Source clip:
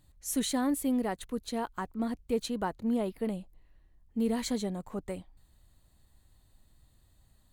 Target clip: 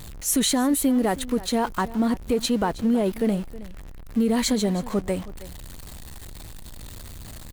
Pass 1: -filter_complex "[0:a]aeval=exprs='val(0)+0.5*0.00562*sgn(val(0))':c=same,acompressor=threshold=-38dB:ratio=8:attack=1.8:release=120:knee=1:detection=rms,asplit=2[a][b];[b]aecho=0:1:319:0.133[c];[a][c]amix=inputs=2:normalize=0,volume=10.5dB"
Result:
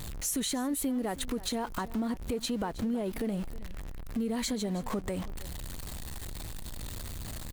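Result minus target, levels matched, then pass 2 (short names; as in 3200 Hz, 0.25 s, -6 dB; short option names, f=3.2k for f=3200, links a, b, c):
compressor: peak gain reduction +10.5 dB
-filter_complex "[0:a]aeval=exprs='val(0)+0.5*0.00562*sgn(val(0))':c=same,acompressor=threshold=-26dB:ratio=8:attack=1.8:release=120:knee=1:detection=rms,asplit=2[a][b];[b]aecho=0:1:319:0.133[c];[a][c]amix=inputs=2:normalize=0,volume=10.5dB"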